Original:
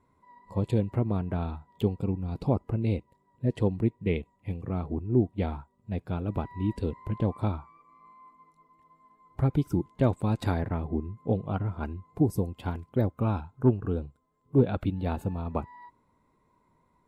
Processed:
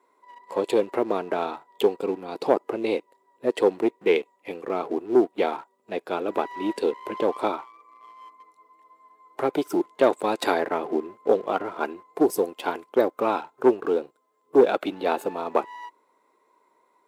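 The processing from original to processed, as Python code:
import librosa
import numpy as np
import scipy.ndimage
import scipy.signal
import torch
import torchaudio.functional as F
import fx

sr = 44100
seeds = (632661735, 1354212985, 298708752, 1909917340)

y = fx.leveller(x, sr, passes=1)
y = scipy.signal.sosfilt(scipy.signal.cheby1(3, 1.0, 380.0, 'highpass', fs=sr, output='sos'), y)
y = y * librosa.db_to_amplitude(8.5)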